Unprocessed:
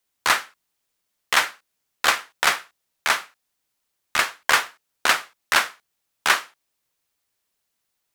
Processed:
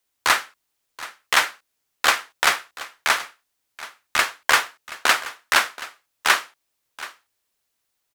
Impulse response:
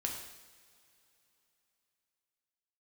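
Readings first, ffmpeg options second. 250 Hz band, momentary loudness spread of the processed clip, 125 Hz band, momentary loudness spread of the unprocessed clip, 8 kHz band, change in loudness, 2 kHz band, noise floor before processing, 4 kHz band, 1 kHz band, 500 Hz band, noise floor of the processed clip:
+0.5 dB, 18 LU, can't be measured, 7 LU, +1.0 dB, +1.0 dB, +1.0 dB, −77 dBFS, +1.0 dB, +1.0 dB, +1.0 dB, −76 dBFS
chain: -af "equalizer=frequency=180:width=7:gain=-11.5,aecho=1:1:728:0.141,volume=1dB"

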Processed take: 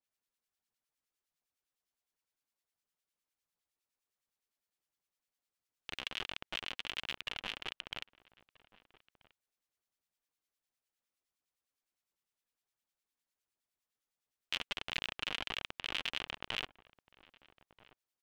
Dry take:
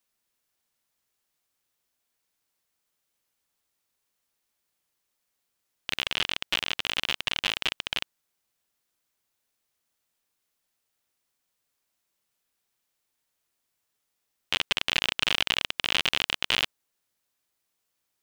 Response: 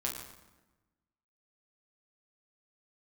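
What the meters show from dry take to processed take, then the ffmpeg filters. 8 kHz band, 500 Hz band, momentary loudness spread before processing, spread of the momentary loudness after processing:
−16.0 dB, −10.5 dB, 7 LU, 7 LU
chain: -filter_complex "[0:a]highshelf=frequency=9500:gain=-5,aphaser=in_gain=1:out_gain=1:delay=4.5:decay=0.25:speed=1.4:type=triangular,acrossover=split=1500[link_01][link_02];[link_01]aeval=exprs='val(0)*(1-0.7/2+0.7/2*cos(2*PI*9.8*n/s))':channel_layout=same[link_03];[link_02]aeval=exprs='val(0)*(1-0.7/2-0.7/2*cos(2*PI*9.8*n/s))':channel_layout=same[link_04];[link_03][link_04]amix=inputs=2:normalize=0,asplit=2[link_05][link_06];[link_06]adelay=1283,volume=-19dB,highshelf=frequency=4000:gain=-28.9[link_07];[link_05][link_07]amix=inputs=2:normalize=0,adynamicequalizer=threshold=0.00794:dfrequency=3500:dqfactor=0.7:tfrequency=3500:tqfactor=0.7:attack=5:release=100:ratio=0.375:range=2.5:mode=cutabove:tftype=highshelf,volume=-8dB"

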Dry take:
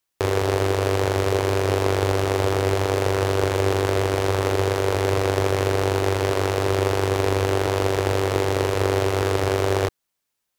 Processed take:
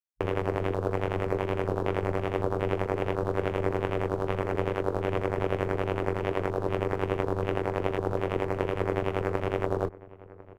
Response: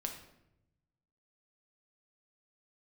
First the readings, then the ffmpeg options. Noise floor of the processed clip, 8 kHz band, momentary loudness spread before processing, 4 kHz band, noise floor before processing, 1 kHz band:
−49 dBFS, below −20 dB, 1 LU, −16.0 dB, −79 dBFS, −7.5 dB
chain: -filter_complex "[0:a]afwtdn=0.0355,tremolo=f=86:d=0.857,asplit=2[link_01][link_02];[link_02]adelay=1050,volume=-19dB,highshelf=frequency=4000:gain=-23.6[link_03];[link_01][link_03]amix=inputs=2:normalize=0,volume=-3.5dB"

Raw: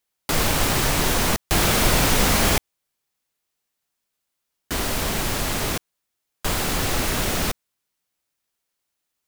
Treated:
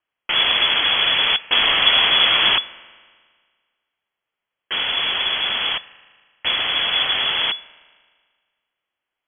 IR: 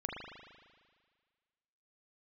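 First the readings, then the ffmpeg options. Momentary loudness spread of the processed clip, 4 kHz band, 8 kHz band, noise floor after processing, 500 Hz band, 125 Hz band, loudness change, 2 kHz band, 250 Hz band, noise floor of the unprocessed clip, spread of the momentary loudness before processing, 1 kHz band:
10 LU, +12.0 dB, below −40 dB, −84 dBFS, −6.5 dB, −18.5 dB, +5.0 dB, +6.0 dB, −13.5 dB, −80 dBFS, 9 LU, 0.0 dB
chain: -filter_complex "[0:a]asplit=2[link_01][link_02];[1:a]atrim=start_sample=2205,lowshelf=frequency=350:gain=-9.5[link_03];[link_02][link_03]afir=irnorm=-1:irlink=0,volume=-16.5dB[link_04];[link_01][link_04]amix=inputs=2:normalize=0,lowpass=frequency=2900:width_type=q:width=0.5098,lowpass=frequency=2900:width_type=q:width=0.6013,lowpass=frequency=2900:width_type=q:width=0.9,lowpass=frequency=2900:width_type=q:width=2.563,afreqshift=-3400,volume=3dB"

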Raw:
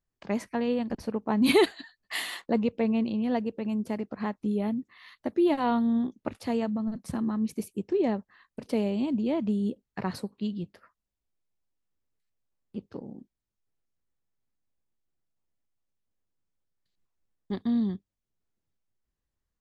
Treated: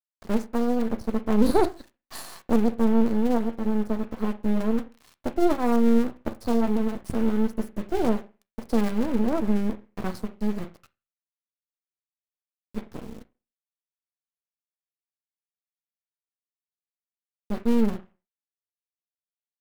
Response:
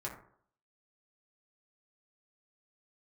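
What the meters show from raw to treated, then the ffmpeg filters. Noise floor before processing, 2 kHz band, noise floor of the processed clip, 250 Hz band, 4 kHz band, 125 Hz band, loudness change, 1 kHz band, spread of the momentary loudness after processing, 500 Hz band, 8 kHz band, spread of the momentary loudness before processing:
below −85 dBFS, −3.0 dB, below −85 dBFS, +3.5 dB, −5.5 dB, +3.5 dB, +3.5 dB, +3.0 dB, 18 LU, +3.0 dB, can't be measured, 15 LU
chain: -filter_complex "[0:a]asuperstop=centerf=2600:order=8:qfactor=1,lowshelf=frequency=66:gain=12,acrusher=bits=6:dc=4:mix=0:aa=0.000001,asplit=2[link_01][link_02];[1:a]atrim=start_sample=2205,asetrate=79380,aresample=44100[link_03];[link_02][link_03]afir=irnorm=-1:irlink=0,volume=-2dB[link_04];[link_01][link_04]amix=inputs=2:normalize=0,aeval=exprs='max(val(0),0)':channel_layout=same,adynamicequalizer=threshold=0.00501:dfrequency=1800:dqfactor=0.7:tfrequency=1800:tqfactor=0.7:attack=5:release=100:ratio=0.375:range=3:mode=cutabove:tftype=highshelf,volume=2.5dB"

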